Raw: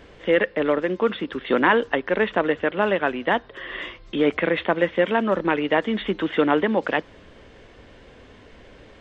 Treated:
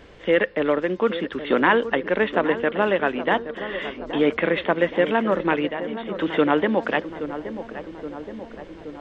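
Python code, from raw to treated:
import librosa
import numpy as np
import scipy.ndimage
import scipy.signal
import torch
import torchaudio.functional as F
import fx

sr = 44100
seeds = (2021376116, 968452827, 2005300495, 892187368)

p1 = fx.comb_fb(x, sr, f0_hz=190.0, decay_s=1.5, harmonics='all', damping=0.0, mix_pct=70, at=(5.68, 6.16))
y = p1 + fx.echo_filtered(p1, sr, ms=823, feedback_pct=69, hz=1300.0, wet_db=-11.0, dry=0)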